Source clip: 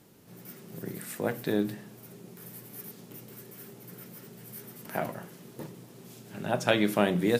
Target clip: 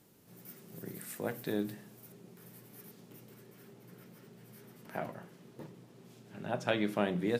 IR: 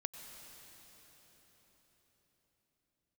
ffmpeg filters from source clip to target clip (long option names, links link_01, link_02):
-af "asetnsamples=nb_out_samples=441:pad=0,asendcmd='2.12 highshelf g -5.5;3.34 highshelf g -11.5',highshelf=frequency=7100:gain=3.5,volume=-6.5dB"